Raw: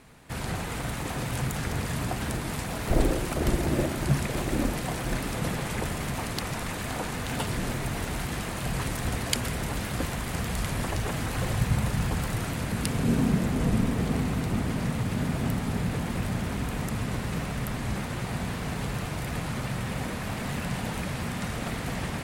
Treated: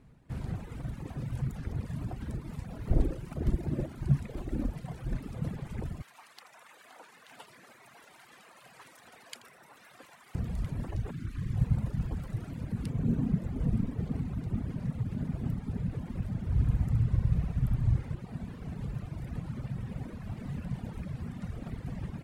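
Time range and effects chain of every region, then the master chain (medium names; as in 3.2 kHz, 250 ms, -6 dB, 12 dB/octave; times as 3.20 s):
6.02–10.35 s: high-pass 870 Hz + delay 82 ms -11 dB
11.11–11.56 s: high-order bell 680 Hz -13.5 dB 1.2 oct + hum notches 60/120/180/240/300/360/420/480 Hz + loudspeaker Doppler distortion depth 0.41 ms
16.48–18.15 s: resonant low shelf 150 Hz +7.5 dB, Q 1.5 + flutter echo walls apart 11.7 m, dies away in 0.82 s
whole clip: FFT filter 140 Hz 0 dB, 730 Hz -12 dB, 12 kHz -21 dB; reverb removal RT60 1.9 s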